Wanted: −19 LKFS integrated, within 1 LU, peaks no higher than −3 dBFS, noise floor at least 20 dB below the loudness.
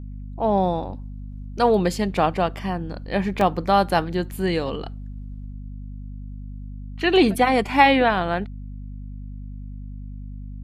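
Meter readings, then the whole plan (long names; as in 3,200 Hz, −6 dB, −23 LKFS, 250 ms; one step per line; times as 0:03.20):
number of dropouts 1; longest dropout 2.4 ms; mains hum 50 Hz; hum harmonics up to 250 Hz; level of the hum −32 dBFS; integrated loudness −21.0 LKFS; sample peak −1.5 dBFS; target loudness −19.0 LKFS
→ repair the gap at 0:03.41, 2.4 ms
mains-hum notches 50/100/150/200/250 Hz
level +2 dB
brickwall limiter −3 dBFS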